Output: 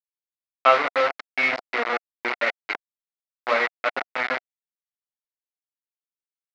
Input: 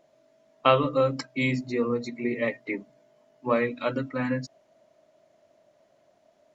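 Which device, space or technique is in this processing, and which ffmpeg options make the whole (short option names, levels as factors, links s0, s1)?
hand-held game console: -af "acrusher=bits=3:mix=0:aa=0.000001,highpass=480,equalizer=f=710:t=q:w=4:g=7,equalizer=f=1400:t=q:w=4:g=7,equalizer=f=2100:t=q:w=4:g=9,equalizer=f=3200:t=q:w=4:g=-4,lowpass=f=4000:w=0.5412,lowpass=f=4000:w=1.3066"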